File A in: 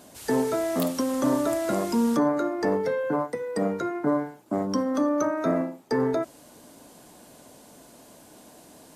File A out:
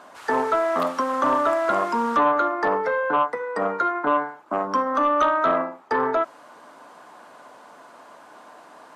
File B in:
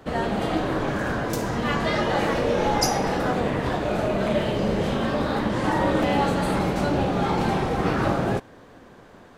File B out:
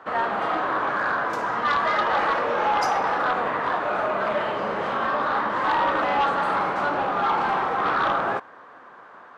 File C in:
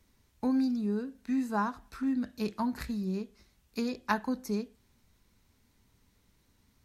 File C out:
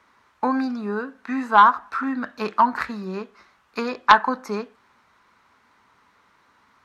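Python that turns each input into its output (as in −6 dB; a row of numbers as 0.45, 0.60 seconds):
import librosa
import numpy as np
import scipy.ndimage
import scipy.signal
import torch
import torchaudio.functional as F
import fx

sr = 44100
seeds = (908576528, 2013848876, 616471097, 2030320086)

y = fx.bandpass_q(x, sr, hz=1200.0, q=2.3)
y = fx.fold_sine(y, sr, drive_db=7, ceiling_db=-16.5)
y = y * 10.0 ** (-24 / 20.0) / np.sqrt(np.mean(np.square(y)))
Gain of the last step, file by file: +4.0, 0.0, +12.5 decibels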